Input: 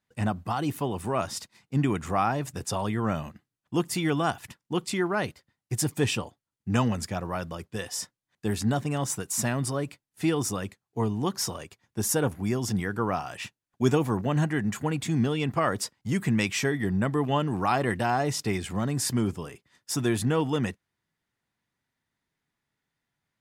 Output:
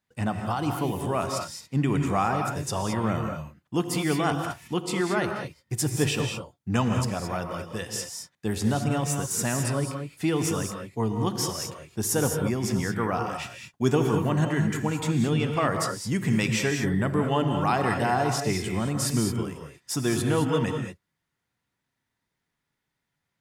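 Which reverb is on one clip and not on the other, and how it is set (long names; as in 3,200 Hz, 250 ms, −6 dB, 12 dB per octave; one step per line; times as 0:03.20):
reverb whose tail is shaped and stops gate 240 ms rising, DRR 3.5 dB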